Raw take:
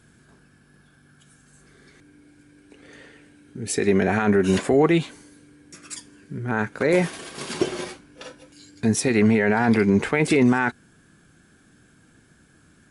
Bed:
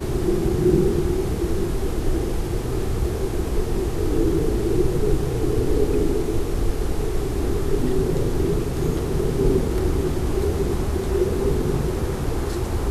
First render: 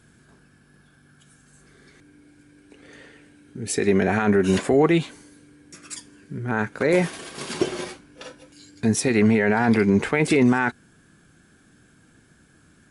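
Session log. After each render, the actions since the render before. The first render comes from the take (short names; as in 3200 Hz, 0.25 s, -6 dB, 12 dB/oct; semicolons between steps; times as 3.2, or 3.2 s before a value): nothing audible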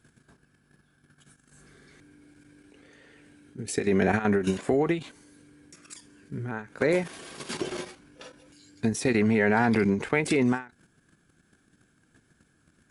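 level quantiser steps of 11 dB; ending taper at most 180 dB/s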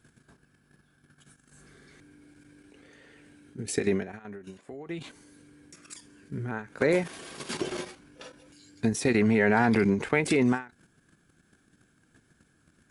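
3.88–5.05 dip -18.5 dB, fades 0.17 s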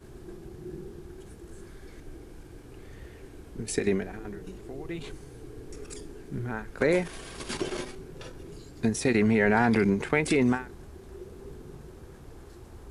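add bed -23 dB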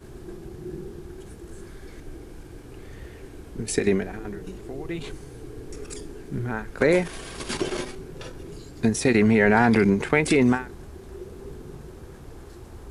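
gain +4.5 dB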